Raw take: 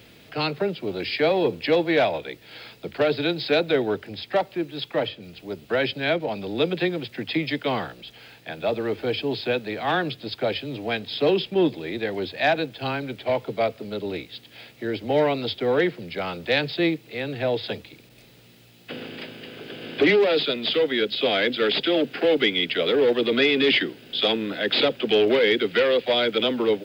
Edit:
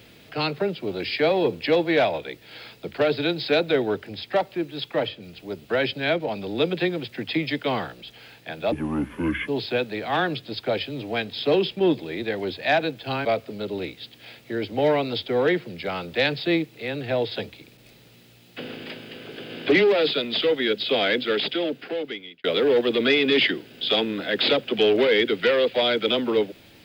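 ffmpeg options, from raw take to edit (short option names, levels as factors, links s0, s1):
-filter_complex "[0:a]asplit=5[s0][s1][s2][s3][s4];[s0]atrim=end=8.724[s5];[s1]atrim=start=8.72:end=9.23,asetpts=PTS-STARTPTS,asetrate=29547,aresample=44100[s6];[s2]atrim=start=9.226:end=13.002[s7];[s3]atrim=start=13.568:end=22.76,asetpts=PTS-STARTPTS,afade=t=out:st=7.872:d=1.32[s8];[s4]atrim=start=22.76,asetpts=PTS-STARTPTS,afade=t=in:d=0.004:c=hsin[s9];[s5][s6]acrossfade=d=0.004:c1=hsin:c2=hsin[s10];[s10][s7]acrossfade=d=0.004:c1=hsin:c2=hsin[s11];[s8][s9]concat=n=2:v=0:a=1[s12];[s11][s12]acrossfade=d=0.004:c1=hsin:c2=hsin"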